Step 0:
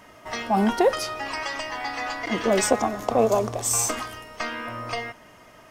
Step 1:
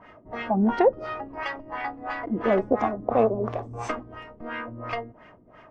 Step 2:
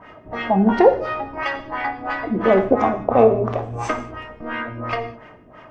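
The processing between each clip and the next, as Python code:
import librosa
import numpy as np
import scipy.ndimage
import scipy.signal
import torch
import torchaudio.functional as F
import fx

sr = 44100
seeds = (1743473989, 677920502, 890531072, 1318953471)

y1 = fx.filter_lfo_lowpass(x, sr, shape='sine', hz=2.9, low_hz=260.0, high_hz=2500.0, q=1.2)
y1 = y1 * librosa.db_to_amplitude(-1.0)
y2 = fx.rev_gated(y1, sr, seeds[0], gate_ms=230, shape='falling', drr_db=6.5)
y2 = y2 * librosa.db_to_amplitude(6.0)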